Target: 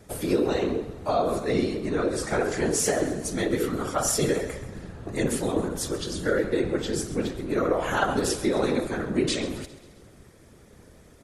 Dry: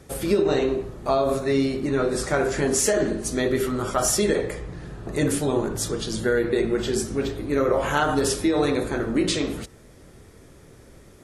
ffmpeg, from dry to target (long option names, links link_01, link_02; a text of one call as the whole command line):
ffmpeg -i in.wav -filter_complex "[0:a]afftfilt=real='hypot(re,im)*cos(2*PI*random(0))':imag='hypot(re,im)*sin(2*PI*random(1))':win_size=512:overlap=0.75,asplit=2[link_01][link_02];[link_02]aecho=0:1:133|266|399|532|665:0.158|0.084|0.0445|0.0236|0.0125[link_03];[link_01][link_03]amix=inputs=2:normalize=0,volume=3dB" out.wav